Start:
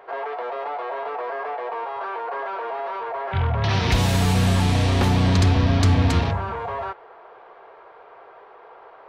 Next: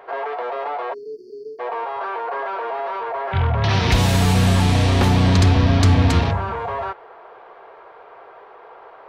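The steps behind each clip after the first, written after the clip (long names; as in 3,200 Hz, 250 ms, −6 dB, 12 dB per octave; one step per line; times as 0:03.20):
time-frequency box erased 0:00.94–0:01.60, 470–4,300 Hz
level +3 dB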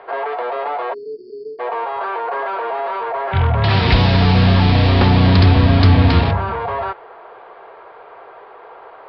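Butterworth low-pass 5,100 Hz 96 dB per octave
level +3.5 dB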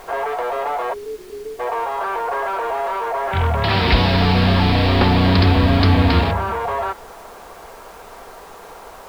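background noise pink −45 dBFS
parametric band 120 Hz −11.5 dB 0.56 octaves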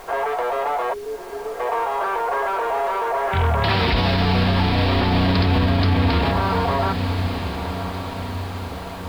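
feedback delay with all-pass diffusion 1,215 ms, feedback 53%, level −11 dB
brickwall limiter −10 dBFS, peak gain reduction 8 dB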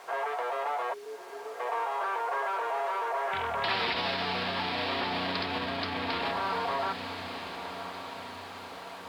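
meter weighting curve A
level −8 dB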